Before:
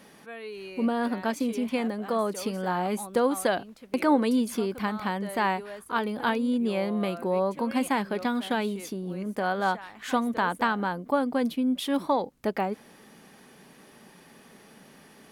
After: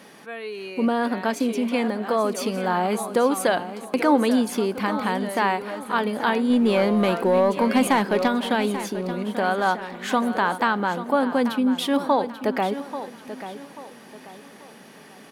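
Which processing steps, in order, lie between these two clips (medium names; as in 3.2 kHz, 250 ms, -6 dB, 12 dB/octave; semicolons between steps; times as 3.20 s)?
high-pass 200 Hz 6 dB/octave; treble shelf 8.9 kHz -4.5 dB; in parallel at -2 dB: peak limiter -20.5 dBFS, peak gain reduction 9.5 dB; 6.50–8.28 s: on the sum: waveshaping leveller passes 1; feedback delay 837 ms, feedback 35%, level -12 dB; on a send at -22 dB: reverberation RT60 3.1 s, pre-delay 33 ms; on the sum: trim +1.5 dB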